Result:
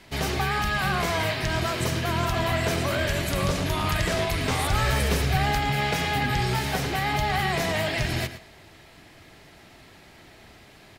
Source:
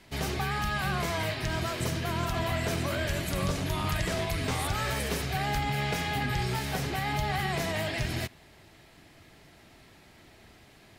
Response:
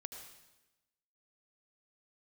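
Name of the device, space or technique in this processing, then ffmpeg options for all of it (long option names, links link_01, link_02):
filtered reverb send: -filter_complex "[0:a]asettb=1/sr,asplit=3[link_01][link_02][link_03];[link_01]atrim=end=4.724[link_04];[link_02]atrim=start=4.72:end=5.51,asetpts=PTS-STARTPTS,afade=type=in:duration=0.004:curve=qsin,afade=type=out:start_time=0.786:duration=0.004:curve=qsin,lowshelf=frequency=110:gain=10.5[link_05];[link_03]atrim=start=5.506[link_06];[link_04][link_05]acrossfade=duration=0.004:curve1=hsin:curve2=qsin[link_07];[link_07][link_06]acrossfade=duration=0.004:curve1=qsin:curve2=hsin,asplit=2[link_08][link_09];[link_09]highpass=310,lowpass=7400[link_10];[1:a]atrim=start_sample=2205[link_11];[link_10][link_11]afir=irnorm=-1:irlink=0,volume=-9dB[link_12];[link_08][link_12]amix=inputs=2:normalize=0,asplit=2[link_13][link_14];[link_14]adelay=110.8,volume=-12dB,highshelf=frequency=4000:gain=-2.49[link_15];[link_13][link_15]amix=inputs=2:normalize=0,volume=4dB"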